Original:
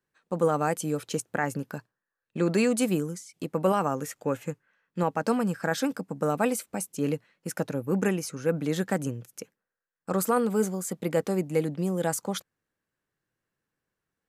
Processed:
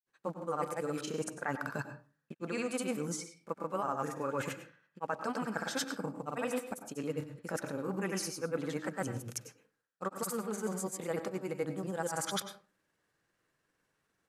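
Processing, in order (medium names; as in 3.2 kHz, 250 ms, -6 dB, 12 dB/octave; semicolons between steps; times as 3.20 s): block-companded coder 7-bit; granulator, pitch spread up and down by 0 st; dynamic bell 1.2 kHz, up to +7 dB, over -45 dBFS, Q 1.2; reverse; compression 6:1, threshold -41 dBFS, peak gain reduction 21.5 dB; reverse; low-pass 12 kHz 12 dB/octave; bass shelf 240 Hz -6.5 dB; on a send: reverberation RT60 0.35 s, pre-delay 92 ms, DRR 9.5 dB; on the sum: trim +8.5 dB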